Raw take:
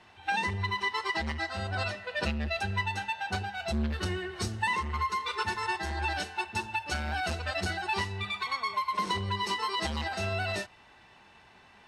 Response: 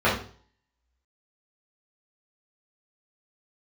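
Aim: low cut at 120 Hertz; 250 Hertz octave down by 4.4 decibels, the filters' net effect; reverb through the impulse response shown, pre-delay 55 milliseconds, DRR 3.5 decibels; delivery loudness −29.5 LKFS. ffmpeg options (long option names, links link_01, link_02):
-filter_complex "[0:a]highpass=120,equalizer=frequency=250:width_type=o:gain=-5.5,asplit=2[link_01][link_02];[1:a]atrim=start_sample=2205,adelay=55[link_03];[link_02][link_03]afir=irnorm=-1:irlink=0,volume=-22dB[link_04];[link_01][link_04]amix=inputs=2:normalize=0,volume=1dB"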